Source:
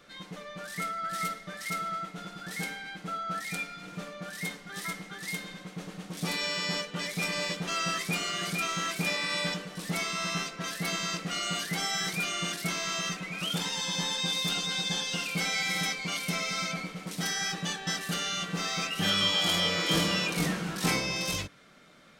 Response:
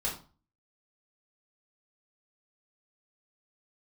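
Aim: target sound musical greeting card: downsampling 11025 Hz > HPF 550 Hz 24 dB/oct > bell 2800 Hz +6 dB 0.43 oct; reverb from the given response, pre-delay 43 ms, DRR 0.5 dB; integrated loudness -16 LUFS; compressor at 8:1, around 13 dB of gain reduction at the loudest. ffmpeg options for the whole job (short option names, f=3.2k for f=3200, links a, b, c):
-filter_complex "[0:a]acompressor=threshold=-36dB:ratio=8,asplit=2[a][b];[1:a]atrim=start_sample=2205,adelay=43[c];[b][c]afir=irnorm=-1:irlink=0,volume=-5.5dB[d];[a][d]amix=inputs=2:normalize=0,aresample=11025,aresample=44100,highpass=f=550:w=0.5412,highpass=f=550:w=1.3066,equalizer=f=2.8k:t=o:w=0.43:g=6,volume=19.5dB"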